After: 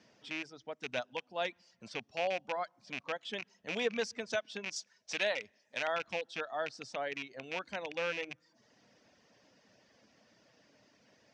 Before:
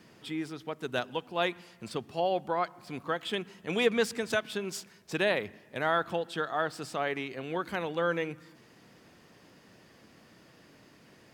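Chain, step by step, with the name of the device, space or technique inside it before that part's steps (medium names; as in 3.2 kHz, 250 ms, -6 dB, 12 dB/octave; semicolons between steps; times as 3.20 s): car door speaker with a rattle (rattle on loud lows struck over -38 dBFS, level -20 dBFS; cabinet simulation 82–6600 Hz, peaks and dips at 100 Hz -5 dB, 160 Hz -8 dB, 360 Hz -7 dB, 600 Hz +5 dB, 1.2 kHz -4 dB, 5.8 kHz +8 dB); reverb removal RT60 0.6 s; 4.76–5.88 s: tilt EQ +2.5 dB/octave; trim -6.5 dB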